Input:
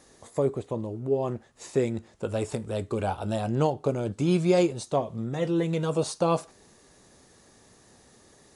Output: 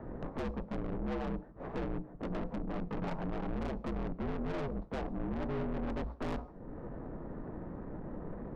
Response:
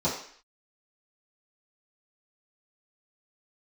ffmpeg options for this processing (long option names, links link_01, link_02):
-filter_complex "[0:a]lowpass=frequency=1400:width=0.5412,lowpass=frequency=1400:width=1.3066,lowshelf=frequency=420:gain=11.5,acompressor=threshold=-42dB:ratio=2.5,aeval=exprs='val(0)*sin(2*PI*140*n/s)':channel_layout=same,afreqshift=-61,aeval=exprs='(tanh(251*val(0)+0.3)-tanh(0.3))/251':channel_layout=same,asplit=2[link_01][link_02];[1:a]atrim=start_sample=2205,adelay=28[link_03];[link_02][link_03]afir=irnorm=-1:irlink=0,volume=-30dB[link_04];[link_01][link_04]amix=inputs=2:normalize=0,volume=13.5dB"